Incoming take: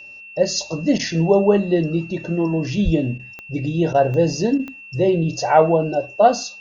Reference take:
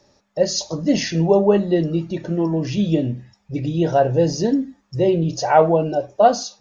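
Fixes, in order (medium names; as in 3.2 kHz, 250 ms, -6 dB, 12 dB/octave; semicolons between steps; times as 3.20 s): de-click; band-stop 2.7 kHz, Q 30; 2.84–2.96 s: high-pass 140 Hz 24 dB/octave; interpolate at 0.98/3.18/3.93/4.58 s, 13 ms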